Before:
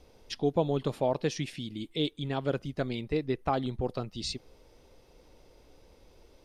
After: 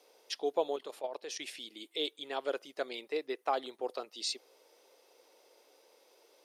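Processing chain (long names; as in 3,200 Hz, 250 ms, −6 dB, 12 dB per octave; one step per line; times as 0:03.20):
high-pass filter 400 Hz 24 dB per octave
high-shelf EQ 7,000 Hz +8 dB
0:00.76–0:01.40: output level in coarse steps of 13 dB
level −2 dB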